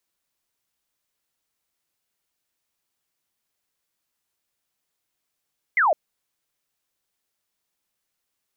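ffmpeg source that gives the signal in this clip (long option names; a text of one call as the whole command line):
ffmpeg -f lavfi -i "aevalsrc='0.168*clip(t/0.002,0,1)*clip((0.16-t)/0.002,0,1)*sin(2*PI*2200*0.16/log(570/2200)*(exp(log(570/2200)*t/0.16)-1))':duration=0.16:sample_rate=44100" out.wav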